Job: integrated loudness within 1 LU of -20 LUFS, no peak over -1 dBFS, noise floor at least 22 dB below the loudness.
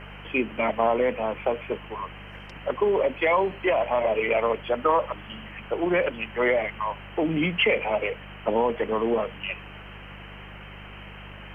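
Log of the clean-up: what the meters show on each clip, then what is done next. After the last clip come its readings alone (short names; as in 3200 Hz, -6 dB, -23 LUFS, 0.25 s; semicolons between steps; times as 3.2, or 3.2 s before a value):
hum 50 Hz; harmonics up to 200 Hz; hum level -42 dBFS; noise floor -42 dBFS; noise floor target -48 dBFS; loudness -25.5 LUFS; peak -9.5 dBFS; loudness target -20.0 LUFS
-> de-hum 50 Hz, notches 4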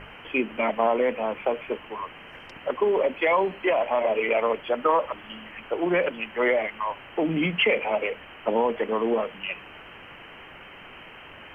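hum none; noise floor -45 dBFS; noise floor target -48 dBFS
-> noise print and reduce 6 dB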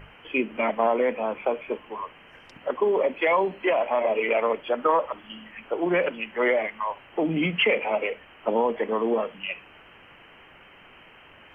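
noise floor -51 dBFS; loudness -25.5 LUFS; peak -10.0 dBFS; loudness target -20.0 LUFS
-> gain +5.5 dB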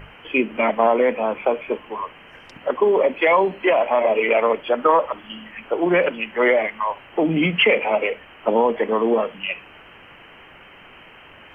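loudness -20.0 LUFS; peak -4.5 dBFS; noise floor -46 dBFS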